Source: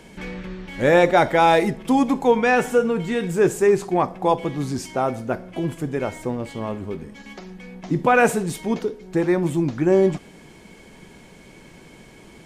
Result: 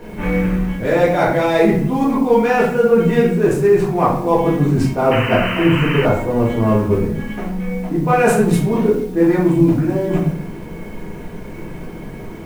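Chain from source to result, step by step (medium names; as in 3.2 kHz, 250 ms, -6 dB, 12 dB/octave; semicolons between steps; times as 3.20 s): local Wiener filter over 9 samples; band-stop 3.4 kHz, Q 16; reverse; compression 16:1, threshold -25 dBFS, peak gain reduction 15 dB; reverse; word length cut 10-bit, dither triangular; simulated room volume 91 m³, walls mixed, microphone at 1.8 m; painted sound noise, 5.11–6.06 s, 870–3100 Hz -30 dBFS; tape noise reduction on one side only decoder only; trim +6 dB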